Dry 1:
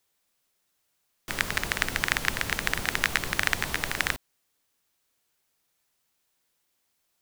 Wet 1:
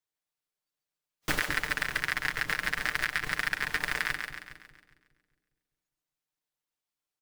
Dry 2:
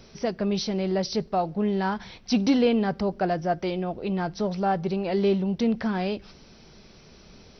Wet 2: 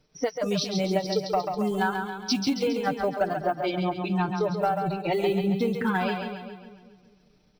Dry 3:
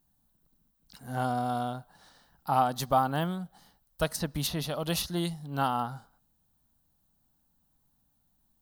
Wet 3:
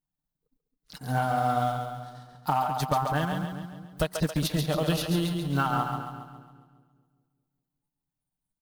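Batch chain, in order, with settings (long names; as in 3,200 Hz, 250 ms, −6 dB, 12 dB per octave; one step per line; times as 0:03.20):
one scale factor per block 5 bits
noise reduction from a noise print of the clip's start 22 dB
high-shelf EQ 5,900 Hz −4.5 dB
comb filter 6.6 ms, depth 53%
dynamic equaliser 1,600 Hz, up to +5 dB, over −37 dBFS, Q 0.99
transient designer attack +3 dB, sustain −11 dB
downward compressor 12 to 1, threshold −27 dBFS
soft clipping −19.5 dBFS
echo with a time of its own for lows and highs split 440 Hz, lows 202 ms, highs 137 ms, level −5.5 dB
level +5.5 dB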